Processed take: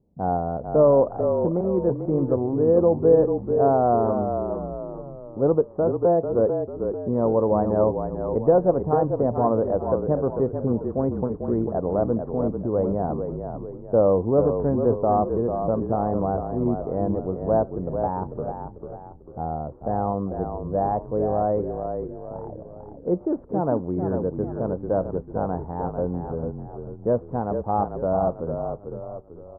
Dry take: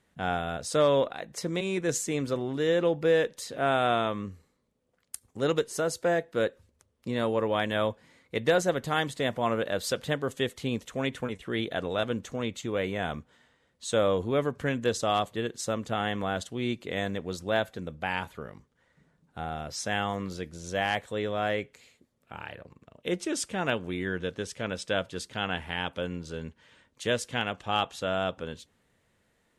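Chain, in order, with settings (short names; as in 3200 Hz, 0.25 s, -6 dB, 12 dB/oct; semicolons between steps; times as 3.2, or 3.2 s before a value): steep low-pass 980 Hz 36 dB/oct; low-pass opened by the level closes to 410 Hz, open at -27.5 dBFS; frequency-shifting echo 0.444 s, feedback 45%, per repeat -35 Hz, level -6.5 dB; gain +7 dB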